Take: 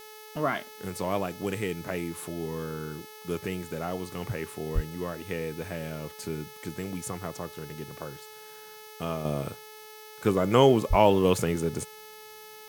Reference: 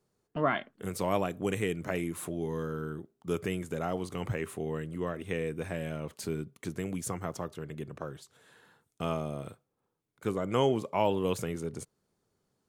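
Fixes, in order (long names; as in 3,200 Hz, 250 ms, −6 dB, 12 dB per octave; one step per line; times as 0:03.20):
hum removal 430.5 Hz, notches 15
0:04.74–0:04.86: high-pass filter 140 Hz 24 dB per octave
0:10.89–0:11.01: high-pass filter 140 Hz 24 dB per octave
noise reduction from a noise print 30 dB
0:09.25: level correction −7.5 dB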